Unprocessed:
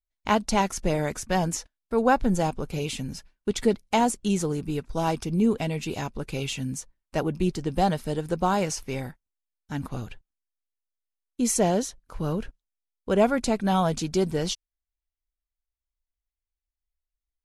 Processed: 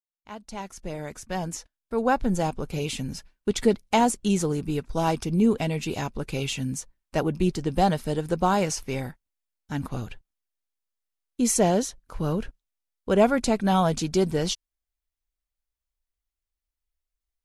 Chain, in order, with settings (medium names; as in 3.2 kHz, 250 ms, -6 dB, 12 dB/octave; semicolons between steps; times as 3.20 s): fade-in on the opening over 3.13 s; trim +1.5 dB